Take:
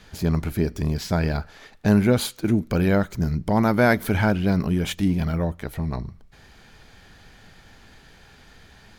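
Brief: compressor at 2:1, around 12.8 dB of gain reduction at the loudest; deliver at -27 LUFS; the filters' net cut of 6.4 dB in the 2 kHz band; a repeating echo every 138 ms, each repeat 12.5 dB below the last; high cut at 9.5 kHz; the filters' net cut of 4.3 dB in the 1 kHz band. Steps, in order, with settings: low-pass 9.5 kHz; peaking EQ 1 kHz -4.5 dB; peaking EQ 2 kHz -7 dB; compression 2:1, threshold -37 dBFS; feedback delay 138 ms, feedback 24%, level -12.5 dB; trim +7 dB

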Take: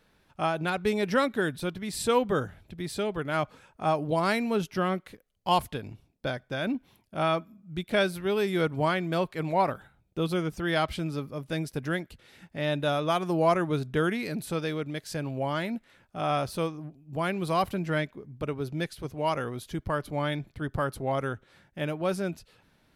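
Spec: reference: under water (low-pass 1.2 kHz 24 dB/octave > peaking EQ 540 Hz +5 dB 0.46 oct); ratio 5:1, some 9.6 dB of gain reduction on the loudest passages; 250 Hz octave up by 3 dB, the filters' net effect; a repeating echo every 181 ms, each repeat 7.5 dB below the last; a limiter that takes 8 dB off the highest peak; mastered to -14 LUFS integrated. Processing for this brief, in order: peaking EQ 250 Hz +4 dB; compression 5:1, threshold -29 dBFS; peak limiter -25 dBFS; low-pass 1.2 kHz 24 dB/octave; peaking EQ 540 Hz +5 dB 0.46 oct; feedback delay 181 ms, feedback 42%, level -7.5 dB; trim +21 dB

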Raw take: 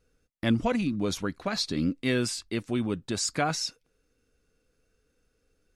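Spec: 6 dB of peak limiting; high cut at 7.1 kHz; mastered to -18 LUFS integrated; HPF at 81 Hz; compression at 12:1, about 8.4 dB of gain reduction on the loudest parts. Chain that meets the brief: high-pass 81 Hz; low-pass 7.1 kHz; compression 12:1, threshold -27 dBFS; trim +16.5 dB; peak limiter -7 dBFS

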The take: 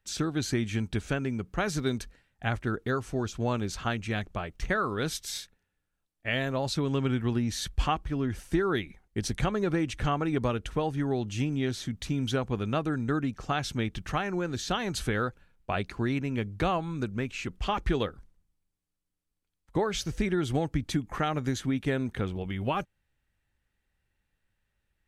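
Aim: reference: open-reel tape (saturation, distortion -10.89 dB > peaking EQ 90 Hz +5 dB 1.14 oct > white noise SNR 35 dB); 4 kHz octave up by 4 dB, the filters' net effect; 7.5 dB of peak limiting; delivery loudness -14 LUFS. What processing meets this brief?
peaking EQ 4 kHz +5 dB; peak limiter -21 dBFS; saturation -30 dBFS; peaking EQ 90 Hz +5 dB 1.14 oct; white noise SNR 35 dB; trim +21.5 dB

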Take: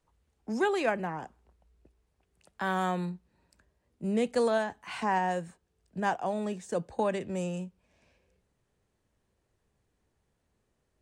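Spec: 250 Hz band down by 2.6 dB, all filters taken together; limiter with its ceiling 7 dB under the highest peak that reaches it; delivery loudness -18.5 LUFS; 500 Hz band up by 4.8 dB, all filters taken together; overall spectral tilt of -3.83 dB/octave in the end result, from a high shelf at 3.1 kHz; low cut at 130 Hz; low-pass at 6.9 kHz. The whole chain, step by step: high-pass 130 Hz; low-pass 6.9 kHz; peaking EQ 250 Hz -5 dB; peaking EQ 500 Hz +7 dB; treble shelf 3.1 kHz +5.5 dB; trim +12.5 dB; peak limiter -7.5 dBFS

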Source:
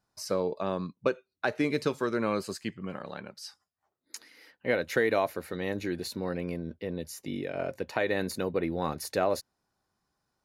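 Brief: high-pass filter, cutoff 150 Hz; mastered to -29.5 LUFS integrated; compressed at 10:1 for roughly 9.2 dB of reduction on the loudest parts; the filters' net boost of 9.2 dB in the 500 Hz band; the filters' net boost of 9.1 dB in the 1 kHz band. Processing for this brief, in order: high-pass 150 Hz; peaking EQ 500 Hz +8.5 dB; peaking EQ 1 kHz +9 dB; compression 10:1, threshold -22 dBFS

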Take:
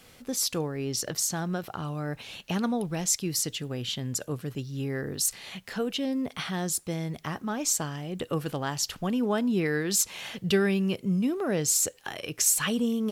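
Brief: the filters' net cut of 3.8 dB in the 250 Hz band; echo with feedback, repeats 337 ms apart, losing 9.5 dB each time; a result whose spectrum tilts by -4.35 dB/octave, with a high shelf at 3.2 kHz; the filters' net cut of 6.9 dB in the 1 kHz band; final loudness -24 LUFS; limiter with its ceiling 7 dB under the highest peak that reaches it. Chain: peaking EQ 250 Hz -4.5 dB; peaking EQ 1 kHz -8.5 dB; treble shelf 3.2 kHz -8.5 dB; peak limiter -23.5 dBFS; feedback delay 337 ms, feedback 33%, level -9.5 dB; trim +10 dB

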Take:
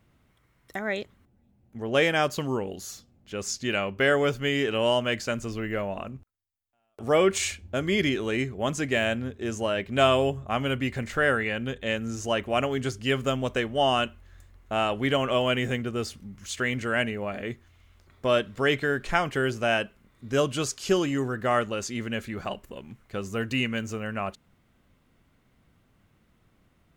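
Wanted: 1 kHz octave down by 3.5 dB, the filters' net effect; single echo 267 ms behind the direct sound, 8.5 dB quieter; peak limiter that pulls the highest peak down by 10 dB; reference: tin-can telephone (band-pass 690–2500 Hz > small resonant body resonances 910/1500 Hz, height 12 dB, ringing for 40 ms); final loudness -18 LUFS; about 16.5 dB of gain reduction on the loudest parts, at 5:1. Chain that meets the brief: peaking EQ 1 kHz -3 dB; compression 5:1, threshold -37 dBFS; peak limiter -32.5 dBFS; band-pass 690–2500 Hz; delay 267 ms -8.5 dB; small resonant body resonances 910/1500 Hz, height 12 dB, ringing for 40 ms; trim +28 dB

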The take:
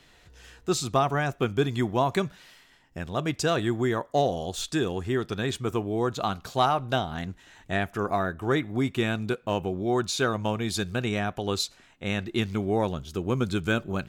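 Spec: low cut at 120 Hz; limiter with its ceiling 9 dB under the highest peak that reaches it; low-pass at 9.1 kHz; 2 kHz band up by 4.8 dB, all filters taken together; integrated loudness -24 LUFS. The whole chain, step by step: high-pass 120 Hz; low-pass 9.1 kHz; peaking EQ 2 kHz +6.5 dB; trim +6.5 dB; peak limiter -11 dBFS

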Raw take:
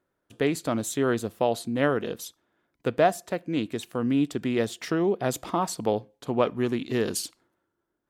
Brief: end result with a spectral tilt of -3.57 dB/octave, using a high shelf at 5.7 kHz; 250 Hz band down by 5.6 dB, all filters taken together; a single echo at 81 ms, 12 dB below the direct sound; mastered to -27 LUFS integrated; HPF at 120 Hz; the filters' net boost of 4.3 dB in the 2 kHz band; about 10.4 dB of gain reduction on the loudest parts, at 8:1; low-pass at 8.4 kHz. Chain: high-pass 120 Hz; low-pass 8.4 kHz; peaking EQ 250 Hz -7 dB; peaking EQ 2 kHz +5 dB; treble shelf 5.7 kHz +5 dB; compression 8:1, threshold -26 dBFS; delay 81 ms -12 dB; trim +5.5 dB

